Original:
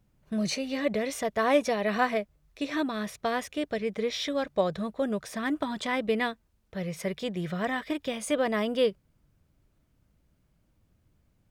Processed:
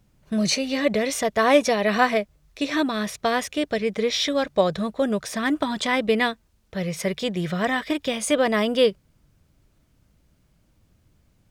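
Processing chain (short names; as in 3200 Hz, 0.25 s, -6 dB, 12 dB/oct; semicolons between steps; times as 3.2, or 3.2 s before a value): bell 5600 Hz +4 dB 2.1 oct; gain +6 dB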